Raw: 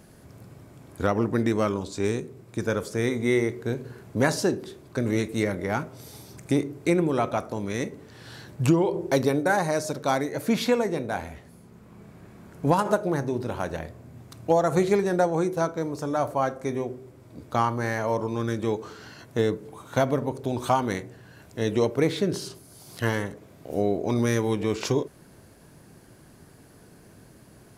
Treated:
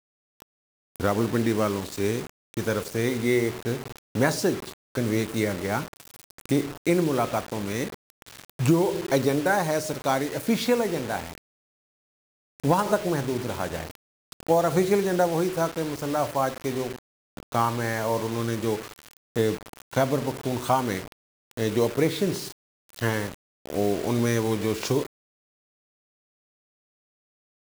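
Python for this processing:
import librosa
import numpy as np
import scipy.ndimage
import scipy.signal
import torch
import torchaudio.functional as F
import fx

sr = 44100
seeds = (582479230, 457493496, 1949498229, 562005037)

y = fx.quant_dither(x, sr, seeds[0], bits=6, dither='none')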